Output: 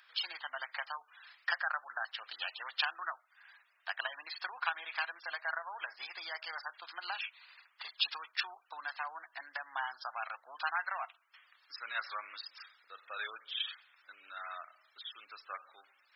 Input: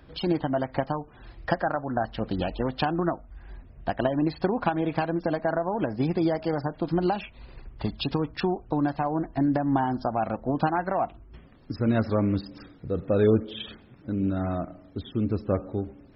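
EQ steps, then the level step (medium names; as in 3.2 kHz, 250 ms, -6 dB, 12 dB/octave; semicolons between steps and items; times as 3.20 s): high-pass 1.3 kHz 24 dB/octave; +1.5 dB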